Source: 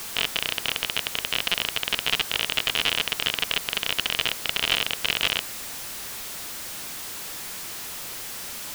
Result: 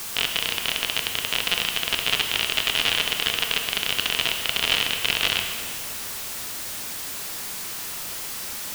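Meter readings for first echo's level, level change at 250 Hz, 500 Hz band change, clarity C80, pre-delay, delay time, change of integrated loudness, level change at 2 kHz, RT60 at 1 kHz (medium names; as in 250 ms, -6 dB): no echo, +2.0 dB, +1.5 dB, 6.0 dB, 21 ms, no echo, +2.0 dB, +2.0 dB, 2.5 s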